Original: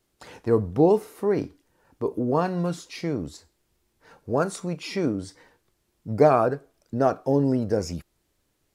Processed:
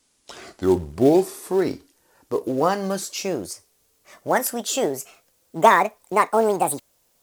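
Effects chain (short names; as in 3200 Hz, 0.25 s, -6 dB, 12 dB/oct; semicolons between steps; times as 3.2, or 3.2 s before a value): speed glide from 71% -> 171%; tone controls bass -8 dB, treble +9 dB; in parallel at -4.5 dB: short-mantissa float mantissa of 2-bit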